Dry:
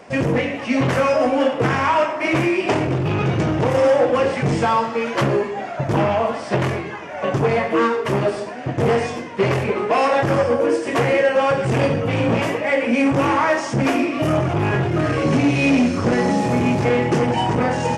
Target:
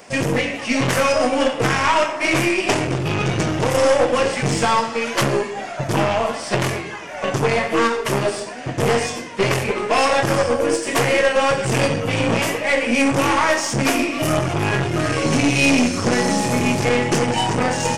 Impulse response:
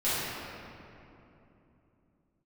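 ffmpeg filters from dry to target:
-af "crystalizer=i=4:c=0,aeval=exprs='0.75*(cos(1*acos(clip(val(0)/0.75,-1,1)))-cos(1*PI/2))+0.237*(cos(2*acos(clip(val(0)/0.75,-1,1)))-cos(2*PI/2))+0.0168*(cos(7*acos(clip(val(0)/0.75,-1,1)))-cos(7*PI/2))':channel_layout=same,volume=-1dB"

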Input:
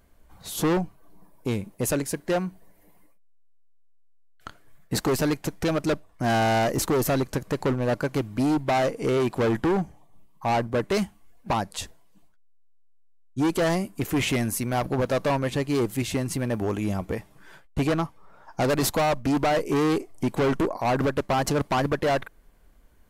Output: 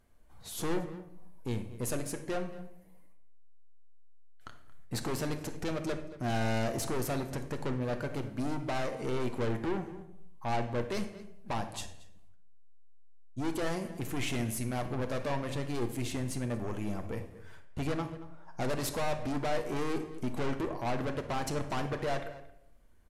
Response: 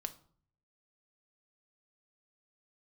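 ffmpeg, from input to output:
-filter_complex "[0:a]asplit=2[link_01][link_02];[link_02]adelay=227.4,volume=-19dB,highshelf=frequency=4000:gain=-5.12[link_03];[link_01][link_03]amix=inputs=2:normalize=0,aeval=exprs='(tanh(14.1*val(0)+0.3)-tanh(0.3))/14.1':channel_layout=same[link_04];[1:a]atrim=start_sample=2205,afade=type=out:start_time=0.34:duration=0.01,atrim=end_sample=15435,asetrate=23814,aresample=44100[link_05];[link_04][link_05]afir=irnorm=-1:irlink=0,volume=-8dB"

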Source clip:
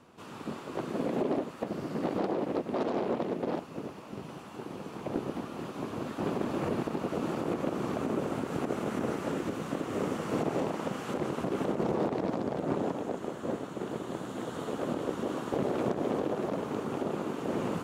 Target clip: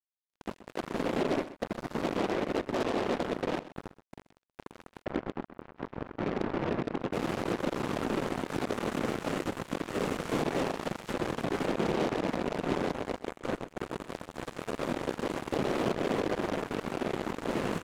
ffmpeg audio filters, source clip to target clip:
ffmpeg -i in.wav -filter_complex "[0:a]asettb=1/sr,asplit=3[link_01][link_02][link_03];[link_01]atrim=end=5.034[link_04];[link_02]atrim=start=5.03:end=7.13,asetpts=PTS-STARTPTS,afade=type=in:duration=0.004:curve=qsin,afade=type=out:start_time=2.096:duration=0.004:curve=qsin,lowpass=1000[link_05];[link_03]atrim=start=7.126[link_06];[link_04][link_05]acrossfade=duration=0.004:curve1=hsin:curve2=qsin[link_07];[link_07][link_06]acrossfade=duration=0.004:curve1=qsin:curve2=hsin,acrusher=bits=4:mix=0:aa=0.5,aecho=1:1:128:0.168" out.wav

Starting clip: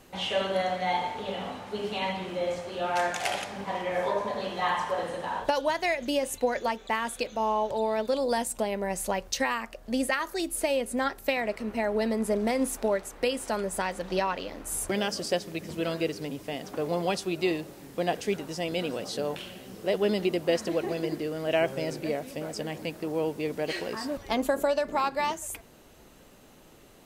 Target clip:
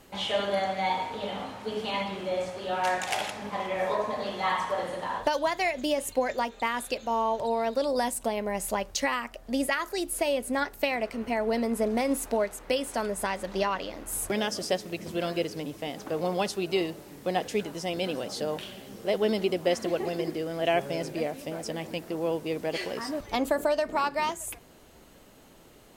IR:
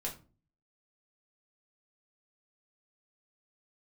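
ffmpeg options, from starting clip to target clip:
-af "asetrate=45938,aresample=44100"

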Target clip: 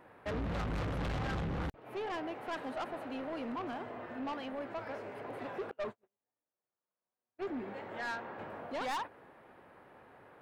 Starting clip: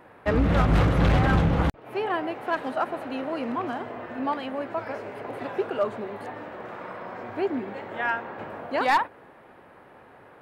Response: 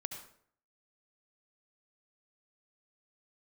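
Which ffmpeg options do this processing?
-filter_complex "[0:a]asettb=1/sr,asplit=3[link_01][link_02][link_03];[link_01]atrim=end=5.714[link_04];[link_02]atrim=start=5.71:end=7.47,asetpts=PTS-STARTPTS,afade=type=in:duration=0.004:curve=qsin,afade=type=out:start_time=1.756:duration=0.004:curve=qsin,agate=range=-53dB:threshold=-27dB:ratio=16:detection=peak[link_05];[link_03]atrim=start=7.466[link_06];[link_04][link_05]acrossfade=duration=0.004:curve1=hsin:curve2=qsin[link_07];[link_07][link_06]acrossfade=duration=0.004:curve1=qsin:curve2=hsin,asoftclip=type=tanh:threshold=-26.5dB,volume=-7dB"

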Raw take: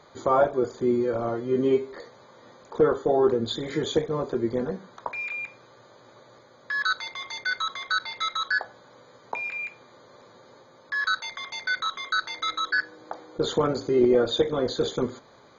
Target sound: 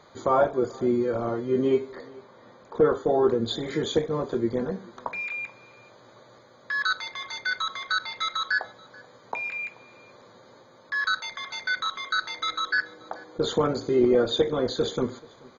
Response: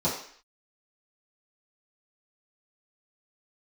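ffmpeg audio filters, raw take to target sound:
-filter_complex "[0:a]asettb=1/sr,asplit=3[link_01][link_02][link_03];[link_01]atrim=end=1.954[link_04];[link_02]atrim=start=1.95:end=2.85,asetpts=PTS-STARTPTS,afade=type=in:duration=0.004:curve=qsin,afade=type=out:start_time=0.896:duration=0.004:curve=qsin,highshelf=frequency=4800:gain=-10.5[link_05];[link_03]atrim=start=2.846[link_06];[link_04][link_05]acrossfade=duration=0.004:curve1=hsin:curve2=qsin[link_07];[link_07][link_06]acrossfade=duration=0.004:curve1=qsin:curve2=hsin,aecho=1:1:433:0.0631,asplit=2[link_08][link_09];[1:a]atrim=start_sample=2205,asetrate=52920,aresample=44100[link_10];[link_09][link_10]afir=irnorm=-1:irlink=0,volume=-29.5dB[link_11];[link_08][link_11]amix=inputs=2:normalize=0"

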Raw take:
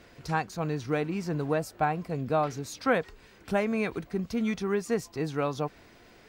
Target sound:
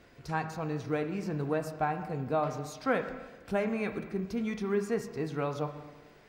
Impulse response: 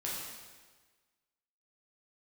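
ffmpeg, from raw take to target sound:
-filter_complex "[0:a]asplit=2[link_01][link_02];[1:a]atrim=start_sample=2205,asetrate=48510,aresample=44100,lowpass=3100[link_03];[link_02][link_03]afir=irnorm=-1:irlink=0,volume=-6dB[link_04];[link_01][link_04]amix=inputs=2:normalize=0,volume=-6dB"

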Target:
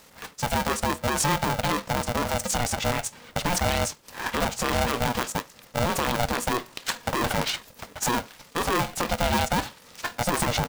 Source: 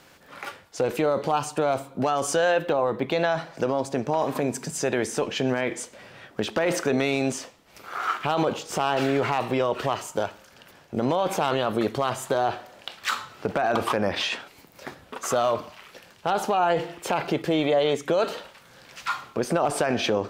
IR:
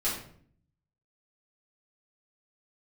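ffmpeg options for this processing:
-af "bass=frequency=250:gain=6,treble=frequency=4000:gain=9,atempo=1.9,aeval=exprs='val(0)*sgn(sin(2*PI*360*n/s))':channel_layout=same,volume=-2dB"

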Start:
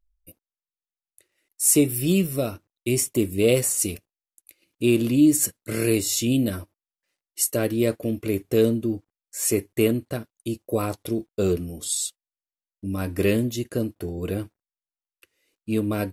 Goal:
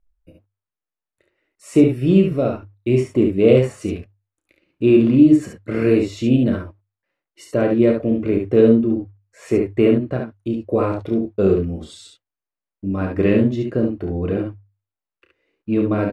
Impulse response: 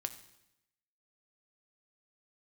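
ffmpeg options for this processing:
-af "lowpass=1800,bandreject=frequency=50:width_type=h:width=6,bandreject=frequency=100:width_type=h:width=6,aecho=1:1:31|57|70:0.398|0.251|0.562,volume=5dB"

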